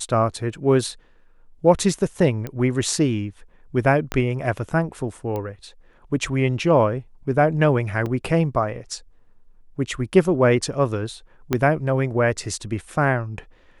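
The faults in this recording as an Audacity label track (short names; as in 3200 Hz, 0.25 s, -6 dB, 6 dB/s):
2.470000	2.470000	pop -17 dBFS
4.120000	4.120000	pop -10 dBFS
5.360000	5.360000	pop -17 dBFS
8.060000	8.060000	gap 3.6 ms
11.530000	11.530000	pop -7 dBFS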